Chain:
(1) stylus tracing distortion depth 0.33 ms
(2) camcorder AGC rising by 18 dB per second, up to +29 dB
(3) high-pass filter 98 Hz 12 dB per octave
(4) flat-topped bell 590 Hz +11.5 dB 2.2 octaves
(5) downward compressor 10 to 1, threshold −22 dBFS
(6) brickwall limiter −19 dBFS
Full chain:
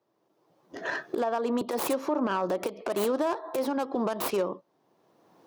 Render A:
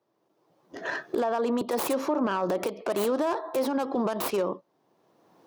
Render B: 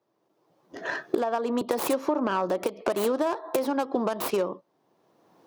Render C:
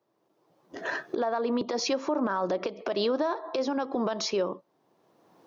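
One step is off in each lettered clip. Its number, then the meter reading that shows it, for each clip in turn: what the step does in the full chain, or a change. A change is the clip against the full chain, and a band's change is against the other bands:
5, average gain reduction 5.5 dB
6, change in crest factor +7.5 dB
1, 4 kHz band +6.5 dB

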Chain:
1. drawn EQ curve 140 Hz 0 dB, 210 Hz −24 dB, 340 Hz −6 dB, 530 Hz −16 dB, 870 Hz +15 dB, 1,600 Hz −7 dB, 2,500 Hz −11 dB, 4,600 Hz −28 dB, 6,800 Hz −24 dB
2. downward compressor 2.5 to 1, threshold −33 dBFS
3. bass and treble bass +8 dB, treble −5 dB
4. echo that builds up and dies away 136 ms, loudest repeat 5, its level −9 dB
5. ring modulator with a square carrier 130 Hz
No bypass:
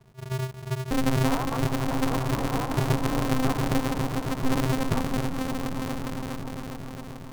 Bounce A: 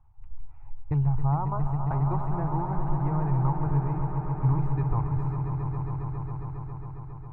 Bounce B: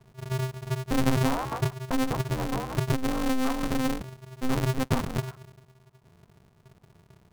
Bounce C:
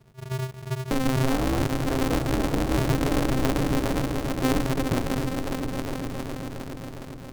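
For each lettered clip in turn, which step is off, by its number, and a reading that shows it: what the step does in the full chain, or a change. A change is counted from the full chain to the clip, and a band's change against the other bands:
5, 125 Hz band +9.0 dB
4, change in momentary loudness spread −1 LU
1, 1 kHz band −2.0 dB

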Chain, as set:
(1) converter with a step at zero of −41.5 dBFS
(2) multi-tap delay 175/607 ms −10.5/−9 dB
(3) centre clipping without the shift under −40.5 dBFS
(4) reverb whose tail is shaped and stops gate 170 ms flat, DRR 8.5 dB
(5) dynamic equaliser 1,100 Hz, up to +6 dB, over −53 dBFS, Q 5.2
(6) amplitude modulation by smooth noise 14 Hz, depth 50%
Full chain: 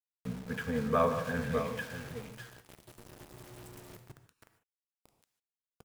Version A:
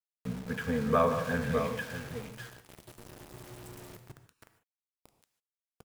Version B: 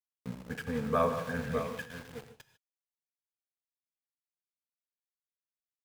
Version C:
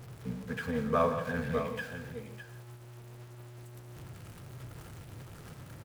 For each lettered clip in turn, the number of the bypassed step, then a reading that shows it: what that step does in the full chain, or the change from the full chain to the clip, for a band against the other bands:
6, change in integrated loudness +2.0 LU
1, distortion level −11 dB
3, distortion level −9 dB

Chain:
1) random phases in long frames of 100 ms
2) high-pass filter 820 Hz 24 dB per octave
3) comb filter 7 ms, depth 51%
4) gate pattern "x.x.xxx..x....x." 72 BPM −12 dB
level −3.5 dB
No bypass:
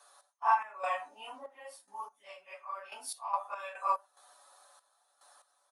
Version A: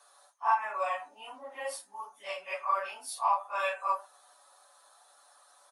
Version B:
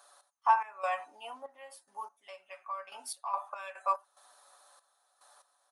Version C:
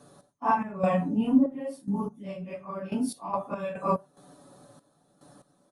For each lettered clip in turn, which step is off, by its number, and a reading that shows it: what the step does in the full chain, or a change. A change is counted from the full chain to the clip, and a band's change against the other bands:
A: 4, 1 kHz band −2.5 dB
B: 1, change in momentary loudness spread +1 LU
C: 2, 500 Hz band +13.0 dB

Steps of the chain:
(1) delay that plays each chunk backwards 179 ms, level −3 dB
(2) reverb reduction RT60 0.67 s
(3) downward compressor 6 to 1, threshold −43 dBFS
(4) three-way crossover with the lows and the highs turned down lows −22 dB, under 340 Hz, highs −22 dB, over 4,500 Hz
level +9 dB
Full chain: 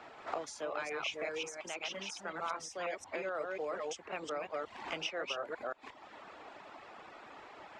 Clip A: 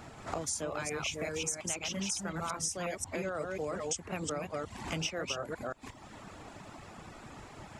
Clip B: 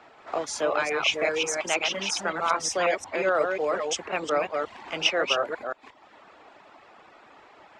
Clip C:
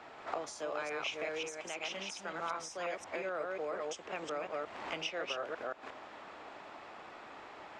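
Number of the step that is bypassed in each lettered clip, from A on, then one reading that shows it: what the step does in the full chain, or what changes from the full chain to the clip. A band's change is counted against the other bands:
4, 125 Hz band +16.0 dB
3, average gain reduction 8.5 dB
2, change in momentary loudness spread −2 LU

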